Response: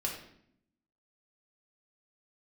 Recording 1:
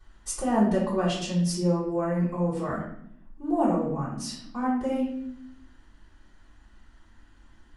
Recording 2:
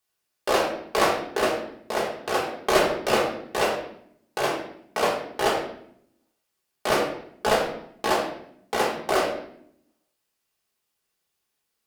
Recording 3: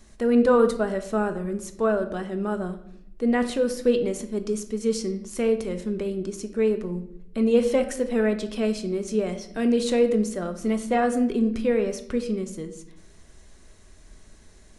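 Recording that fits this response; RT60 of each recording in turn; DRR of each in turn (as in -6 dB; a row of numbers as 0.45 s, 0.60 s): 2; 0.70 s, 0.70 s, 0.70 s; -11.5 dB, -3.0 dB, 6.5 dB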